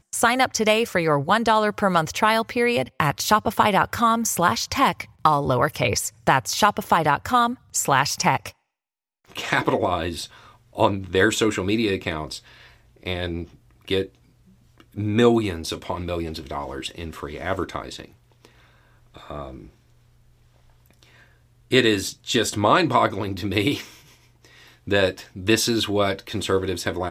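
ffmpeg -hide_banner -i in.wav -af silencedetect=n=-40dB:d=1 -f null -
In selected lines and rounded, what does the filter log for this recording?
silence_start: 19.69
silence_end: 20.86 | silence_duration: 1.17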